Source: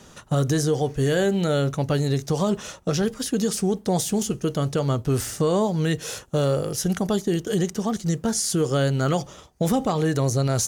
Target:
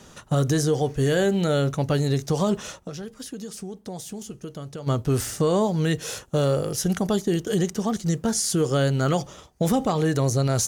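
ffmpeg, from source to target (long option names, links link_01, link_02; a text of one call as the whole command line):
ffmpeg -i in.wav -filter_complex "[0:a]asplit=3[link_01][link_02][link_03];[link_01]afade=type=out:start_time=2.77:duration=0.02[link_04];[link_02]acompressor=threshold=-37dB:ratio=3,afade=type=in:start_time=2.77:duration=0.02,afade=type=out:start_time=4.86:duration=0.02[link_05];[link_03]afade=type=in:start_time=4.86:duration=0.02[link_06];[link_04][link_05][link_06]amix=inputs=3:normalize=0" out.wav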